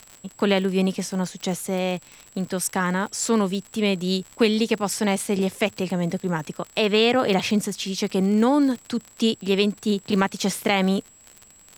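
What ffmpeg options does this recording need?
ffmpeg -i in.wav -af "adeclick=threshold=4,bandreject=frequency=7700:width=30,agate=range=-21dB:threshold=-43dB" out.wav

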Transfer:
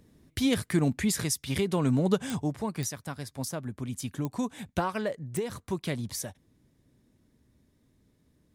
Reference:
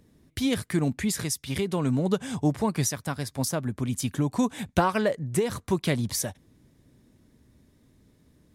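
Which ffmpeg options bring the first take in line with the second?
ffmpeg -i in.wav -af "adeclick=threshold=4,asetnsamples=nb_out_samples=441:pad=0,asendcmd='2.42 volume volume 6.5dB',volume=0dB" out.wav

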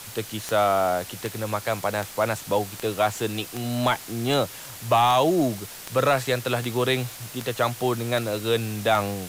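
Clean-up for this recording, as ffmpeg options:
ffmpeg -i in.wav -af "adeclick=threshold=4,afwtdn=0.011" out.wav

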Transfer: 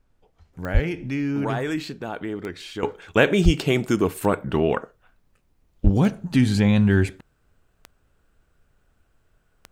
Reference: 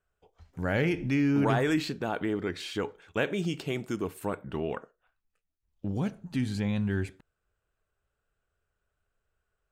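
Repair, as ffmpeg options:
ffmpeg -i in.wav -filter_complex "[0:a]adeclick=threshold=4,asplit=3[link_01][link_02][link_03];[link_01]afade=type=out:start_time=0.73:duration=0.02[link_04];[link_02]highpass=frequency=140:width=0.5412,highpass=frequency=140:width=1.3066,afade=type=in:start_time=0.73:duration=0.02,afade=type=out:start_time=0.85:duration=0.02[link_05];[link_03]afade=type=in:start_time=0.85:duration=0.02[link_06];[link_04][link_05][link_06]amix=inputs=3:normalize=0,asplit=3[link_07][link_08][link_09];[link_07]afade=type=out:start_time=3.44:duration=0.02[link_10];[link_08]highpass=frequency=140:width=0.5412,highpass=frequency=140:width=1.3066,afade=type=in:start_time=3.44:duration=0.02,afade=type=out:start_time=3.56:duration=0.02[link_11];[link_09]afade=type=in:start_time=3.56:duration=0.02[link_12];[link_10][link_11][link_12]amix=inputs=3:normalize=0,asplit=3[link_13][link_14][link_15];[link_13]afade=type=out:start_time=5.83:duration=0.02[link_16];[link_14]highpass=frequency=140:width=0.5412,highpass=frequency=140:width=1.3066,afade=type=in:start_time=5.83:duration=0.02,afade=type=out:start_time=5.95:duration=0.02[link_17];[link_15]afade=type=in:start_time=5.95:duration=0.02[link_18];[link_16][link_17][link_18]amix=inputs=3:normalize=0,agate=range=-21dB:threshold=-57dB,asetnsamples=nb_out_samples=441:pad=0,asendcmd='2.83 volume volume -11.5dB',volume=0dB" out.wav

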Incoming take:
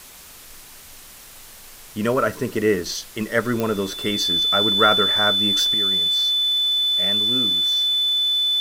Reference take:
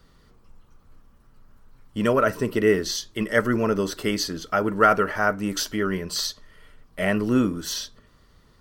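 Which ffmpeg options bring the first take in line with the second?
ffmpeg -i in.wav -af "adeclick=threshold=4,bandreject=frequency=3500:width=30,afwtdn=0.0079,asetnsamples=nb_out_samples=441:pad=0,asendcmd='5.74 volume volume 9dB',volume=0dB" out.wav

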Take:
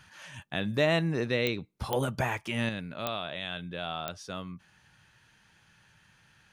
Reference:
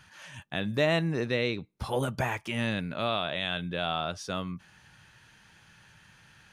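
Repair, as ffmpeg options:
ffmpeg -i in.wav -af "adeclick=threshold=4,asetnsamples=nb_out_samples=441:pad=0,asendcmd='2.69 volume volume 5dB',volume=0dB" out.wav

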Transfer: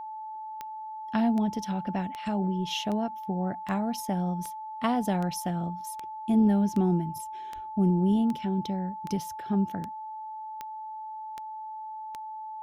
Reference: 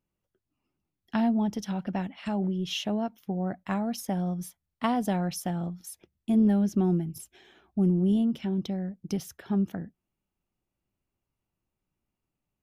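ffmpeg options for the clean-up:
ffmpeg -i in.wav -filter_complex "[0:a]adeclick=threshold=4,bandreject=frequency=870:width=30,asplit=3[link_01][link_02][link_03];[link_01]afade=type=out:start_time=7.54:duration=0.02[link_04];[link_02]highpass=frequency=140:width=0.5412,highpass=frequency=140:width=1.3066,afade=type=in:start_time=7.54:duration=0.02,afade=type=out:start_time=7.66:duration=0.02[link_05];[link_03]afade=type=in:start_time=7.66:duration=0.02[link_06];[link_04][link_05][link_06]amix=inputs=3:normalize=0" out.wav

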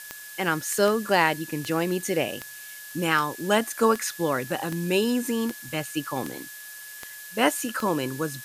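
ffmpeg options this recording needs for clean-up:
ffmpeg -i in.wav -af "adeclick=threshold=4,bandreject=frequency=1700:width=30,afftdn=noise_reduction=28:noise_floor=-42" out.wav

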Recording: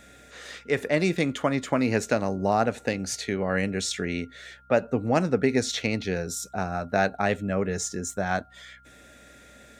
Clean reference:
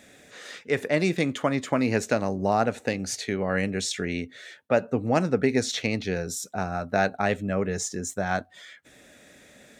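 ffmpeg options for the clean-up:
ffmpeg -i in.wav -af "bandreject=frequency=63.3:width_type=h:width=4,bandreject=frequency=126.6:width_type=h:width=4,bandreject=frequency=189.9:width_type=h:width=4,bandreject=frequency=253.2:width_type=h:width=4,bandreject=frequency=1400:width=30" out.wav

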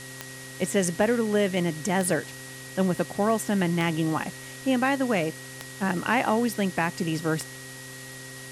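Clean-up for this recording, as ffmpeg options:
ffmpeg -i in.wav -af "adeclick=threshold=4,bandreject=frequency=130.8:width_type=h:width=4,bandreject=frequency=261.6:width_type=h:width=4,bandreject=frequency=392.4:width_type=h:width=4,bandreject=frequency=523.2:width_type=h:width=4,bandreject=frequency=1900:width=30,afwtdn=0.0079" out.wav

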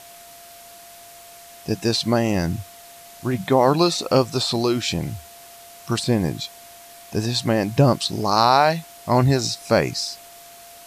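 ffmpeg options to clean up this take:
ffmpeg -i in.wav -af "bandreject=frequency=690:width=30,afftdn=noise_reduction=21:noise_floor=-44" out.wav

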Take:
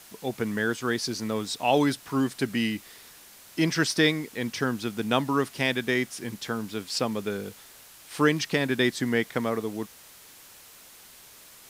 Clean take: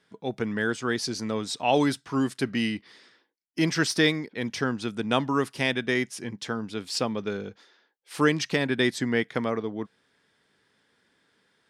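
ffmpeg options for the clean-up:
ffmpeg -i in.wav -af "afftdn=noise_reduction=18:noise_floor=-50" out.wav

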